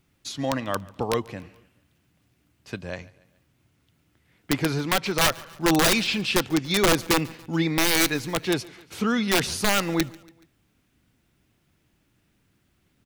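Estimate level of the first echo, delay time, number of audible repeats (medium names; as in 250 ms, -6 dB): -23.0 dB, 142 ms, 3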